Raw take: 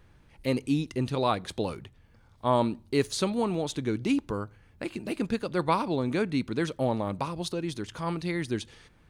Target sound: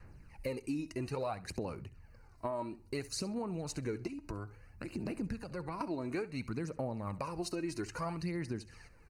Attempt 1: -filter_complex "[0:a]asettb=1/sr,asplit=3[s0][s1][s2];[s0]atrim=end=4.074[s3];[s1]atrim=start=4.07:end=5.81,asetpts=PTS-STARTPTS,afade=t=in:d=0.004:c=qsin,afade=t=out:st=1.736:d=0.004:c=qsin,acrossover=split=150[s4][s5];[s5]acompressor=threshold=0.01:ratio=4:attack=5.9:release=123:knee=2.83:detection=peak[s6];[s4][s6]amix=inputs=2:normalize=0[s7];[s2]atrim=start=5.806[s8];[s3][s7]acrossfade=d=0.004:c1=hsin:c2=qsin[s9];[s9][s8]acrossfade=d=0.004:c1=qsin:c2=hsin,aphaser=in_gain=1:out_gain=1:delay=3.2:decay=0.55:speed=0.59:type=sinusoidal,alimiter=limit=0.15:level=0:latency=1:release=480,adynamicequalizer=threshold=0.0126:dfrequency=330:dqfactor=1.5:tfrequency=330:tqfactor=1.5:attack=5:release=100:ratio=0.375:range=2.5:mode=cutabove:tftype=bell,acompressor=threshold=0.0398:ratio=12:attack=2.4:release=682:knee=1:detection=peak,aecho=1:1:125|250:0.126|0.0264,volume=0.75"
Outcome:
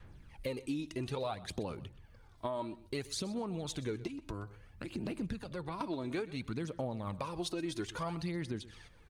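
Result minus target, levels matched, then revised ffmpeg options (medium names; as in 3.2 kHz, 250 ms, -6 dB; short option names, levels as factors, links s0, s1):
echo 58 ms late; 4 kHz band +3.5 dB
-filter_complex "[0:a]asettb=1/sr,asplit=3[s0][s1][s2];[s0]atrim=end=4.074[s3];[s1]atrim=start=4.07:end=5.81,asetpts=PTS-STARTPTS,afade=t=in:d=0.004:c=qsin,afade=t=out:st=1.736:d=0.004:c=qsin,acrossover=split=150[s4][s5];[s5]acompressor=threshold=0.01:ratio=4:attack=5.9:release=123:knee=2.83:detection=peak[s6];[s4][s6]amix=inputs=2:normalize=0[s7];[s2]atrim=start=5.806[s8];[s3][s7]acrossfade=d=0.004:c1=hsin:c2=qsin[s9];[s9][s8]acrossfade=d=0.004:c1=qsin:c2=hsin,aphaser=in_gain=1:out_gain=1:delay=3.2:decay=0.55:speed=0.59:type=sinusoidal,alimiter=limit=0.15:level=0:latency=1:release=480,adynamicequalizer=threshold=0.0126:dfrequency=330:dqfactor=1.5:tfrequency=330:tqfactor=1.5:attack=5:release=100:ratio=0.375:range=2.5:mode=cutabove:tftype=bell,asuperstop=centerf=3400:order=4:qfactor=2.6,acompressor=threshold=0.0398:ratio=12:attack=2.4:release=682:knee=1:detection=peak,aecho=1:1:67|134:0.126|0.0264,volume=0.75"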